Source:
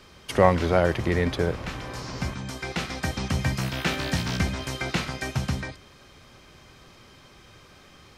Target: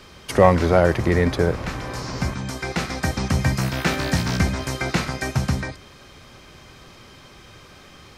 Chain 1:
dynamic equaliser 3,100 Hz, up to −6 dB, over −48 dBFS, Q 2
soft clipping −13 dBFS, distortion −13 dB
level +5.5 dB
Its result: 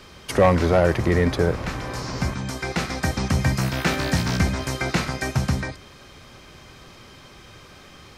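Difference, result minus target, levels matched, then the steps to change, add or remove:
soft clipping: distortion +9 dB
change: soft clipping −5.5 dBFS, distortion −22 dB

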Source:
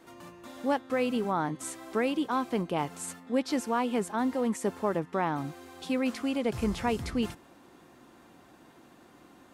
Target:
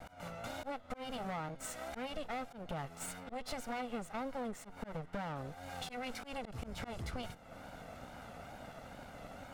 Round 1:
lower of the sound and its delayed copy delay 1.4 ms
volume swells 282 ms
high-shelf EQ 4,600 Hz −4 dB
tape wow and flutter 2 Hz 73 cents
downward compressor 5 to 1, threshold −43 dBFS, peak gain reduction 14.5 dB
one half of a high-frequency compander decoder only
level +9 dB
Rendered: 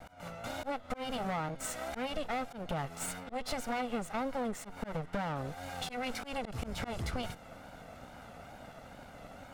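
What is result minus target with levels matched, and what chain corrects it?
downward compressor: peak gain reduction −5 dB
lower of the sound and its delayed copy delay 1.4 ms
volume swells 282 ms
high-shelf EQ 4,600 Hz −4 dB
tape wow and flutter 2 Hz 73 cents
downward compressor 5 to 1, threshold −49.5 dBFS, peak gain reduction 20 dB
one half of a high-frequency compander decoder only
level +9 dB

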